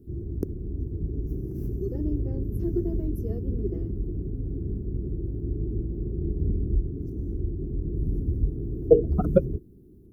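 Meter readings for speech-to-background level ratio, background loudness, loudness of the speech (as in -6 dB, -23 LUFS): 8.0 dB, -31.0 LUFS, -23.0 LUFS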